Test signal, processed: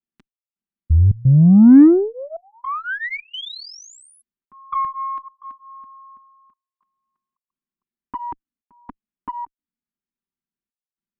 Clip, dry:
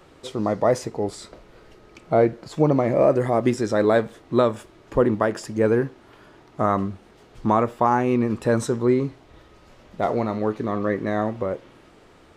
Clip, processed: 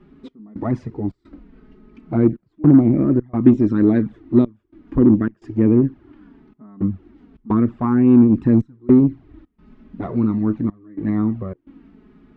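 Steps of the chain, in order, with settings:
low-pass filter 2,400 Hz 12 dB per octave
low shelf with overshoot 390 Hz +10 dB, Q 3
gate pattern "xx..xxxx.xxxxxx" 108 BPM −24 dB
flanger swept by the level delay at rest 5.1 ms, full sweep at −5.5 dBFS
harmonic generator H 5 −37 dB, 8 −34 dB, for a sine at 3 dBFS
level −3.5 dB

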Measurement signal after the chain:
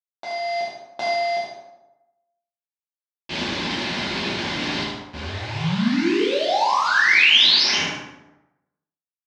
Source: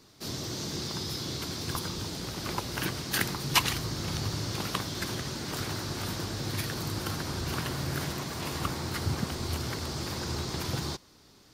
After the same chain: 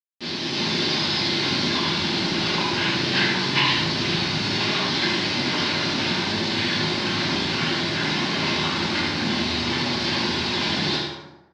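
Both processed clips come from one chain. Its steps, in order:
variable-slope delta modulation 32 kbit/s
in parallel at −5 dB: comparator with hysteresis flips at −40 dBFS
on the sum: downward compressor 2.5 to 1, threshold −36 dBFS
bit reduction 7 bits
high-shelf EQ 3,400 Hz +8 dB
automatic gain control gain up to 7 dB
reverb reduction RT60 0.63 s
loudspeaker in its box 210–4,400 Hz, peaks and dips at 460 Hz −9 dB, 700 Hz −6 dB, 1,300 Hz −9 dB
on a send: repeating echo 75 ms, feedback 29%, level −5 dB
on the sum: dense smooth reverb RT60 0.94 s, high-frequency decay 0.6×, DRR −7.5 dB
level +1 dB

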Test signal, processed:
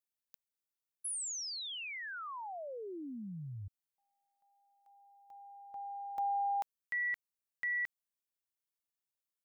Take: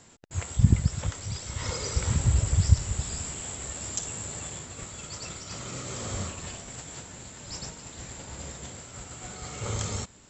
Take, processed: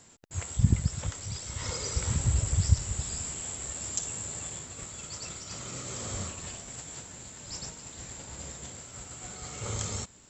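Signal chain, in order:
high-shelf EQ 7,500 Hz +8 dB
level −3.5 dB

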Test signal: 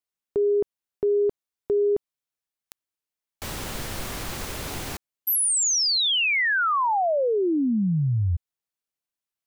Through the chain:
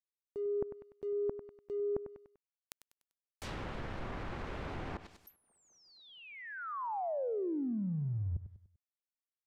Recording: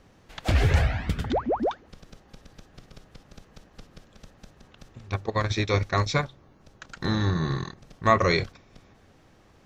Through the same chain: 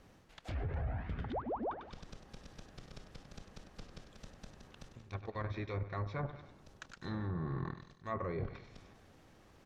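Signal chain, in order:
mu-law and A-law mismatch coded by A
reversed playback
downward compressor 6 to 1, threshold −39 dBFS
reversed playback
repeating echo 98 ms, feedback 42%, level −15.5 dB
transient designer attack −4 dB, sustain +2 dB
treble cut that deepens with the level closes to 960 Hz, closed at −36 dBFS
level +3.5 dB

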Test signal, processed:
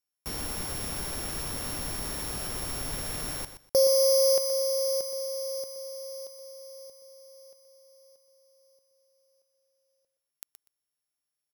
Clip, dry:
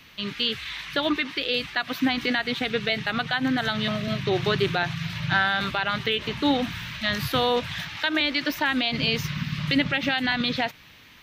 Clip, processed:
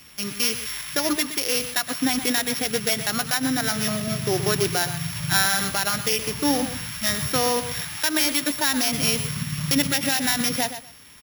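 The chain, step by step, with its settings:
samples sorted by size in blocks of 8 samples
high-shelf EQ 8,700 Hz +8.5 dB
repeating echo 122 ms, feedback 18%, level −11 dB

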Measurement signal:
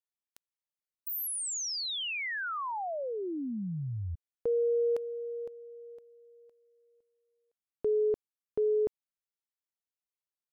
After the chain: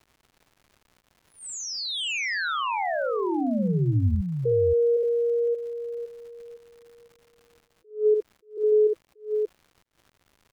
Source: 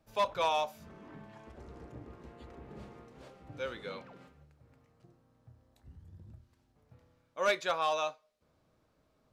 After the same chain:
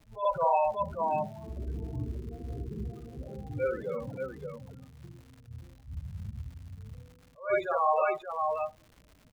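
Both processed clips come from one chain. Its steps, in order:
Butterworth low-pass 8,700 Hz 72 dB per octave
spectral peaks only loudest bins 8
multi-tap delay 61/581 ms −4/−5.5 dB
surface crackle 250 per second −50 dBFS
high-shelf EQ 3,100 Hz −8 dB
in parallel at +1 dB: brickwall limiter −30 dBFS
on the sum: low-shelf EQ 150 Hz +8 dB
level that may rise only so fast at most 190 dB per second
level +1.5 dB

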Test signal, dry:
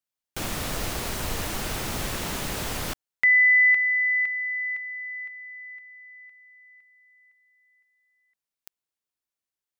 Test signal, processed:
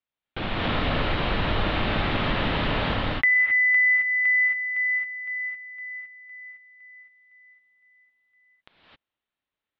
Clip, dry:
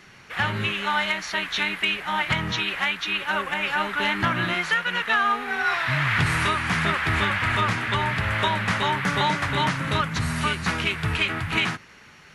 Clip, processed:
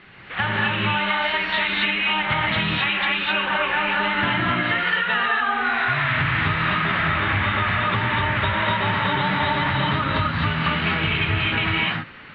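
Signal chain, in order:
Butterworth low-pass 3,800 Hz 48 dB per octave
reverb whose tail is shaped and stops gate 290 ms rising, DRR −4 dB
downward compressor 6 to 1, threshold −20 dBFS
level +2 dB

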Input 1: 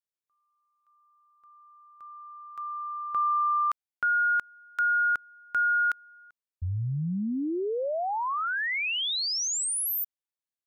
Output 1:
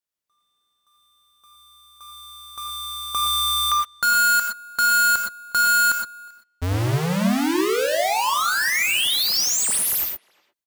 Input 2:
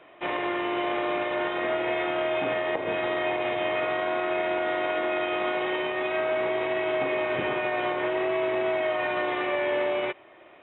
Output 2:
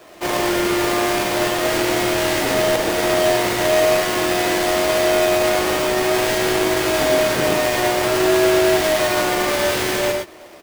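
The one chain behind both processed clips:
each half-wave held at its own peak
far-end echo of a speakerphone 360 ms, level −23 dB
reverb whose tail is shaped and stops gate 140 ms rising, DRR 2 dB
level +3 dB

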